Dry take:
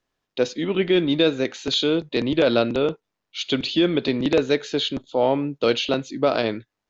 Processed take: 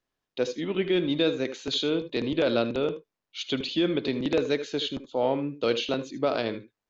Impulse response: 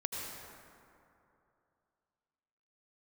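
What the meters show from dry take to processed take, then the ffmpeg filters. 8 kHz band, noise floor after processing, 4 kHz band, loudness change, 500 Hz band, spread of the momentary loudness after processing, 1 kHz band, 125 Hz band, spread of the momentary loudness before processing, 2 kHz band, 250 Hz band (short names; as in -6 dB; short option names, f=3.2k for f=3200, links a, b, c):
n/a, under -85 dBFS, -6.0 dB, -5.5 dB, -5.5 dB, 6 LU, -6.0 dB, -6.0 dB, 7 LU, -6.0 dB, -5.5 dB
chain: -filter_complex "[1:a]atrim=start_sample=2205,atrim=end_sample=3528[a];[0:a][a]afir=irnorm=-1:irlink=0,volume=-4.5dB"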